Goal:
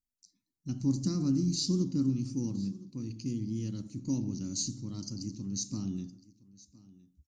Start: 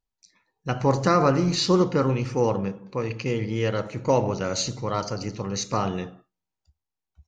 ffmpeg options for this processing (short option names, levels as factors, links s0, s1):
-af "firequalizer=gain_entry='entry(120,0);entry(280,8);entry(460,-24);entry(1800,-24);entry(4800,3);entry(8400,7)':delay=0.05:min_phase=1,aecho=1:1:1014:0.0841,volume=0.376"